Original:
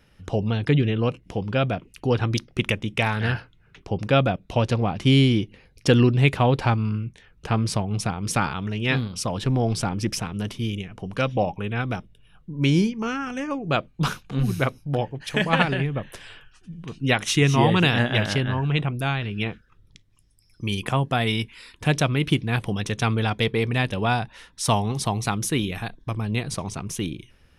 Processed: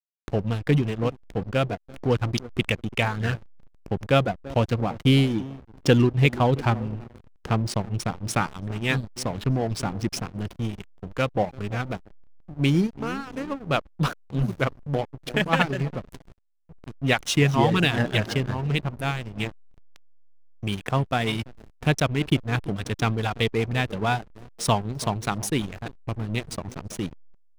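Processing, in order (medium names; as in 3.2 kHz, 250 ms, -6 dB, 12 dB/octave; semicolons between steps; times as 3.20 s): reverb removal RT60 0.75 s; band-passed feedback delay 336 ms, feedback 59%, band-pass 370 Hz, level -12.5 dB; hysteresis with a dead band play -27 dBFS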